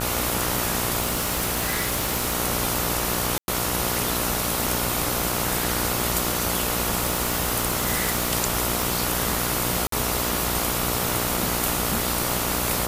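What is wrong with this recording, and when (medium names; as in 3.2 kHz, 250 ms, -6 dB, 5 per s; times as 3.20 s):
buzz 60 Hz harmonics 24 -29 dBFS
1.00–2.34 s: clipped -19 dBFS
3.38–3.48 s: dropout 101 ms
7.02–8.33 s: clipped -16 dBFS
8.82 s: pop
9.87–9.92 s: dropout 53 ms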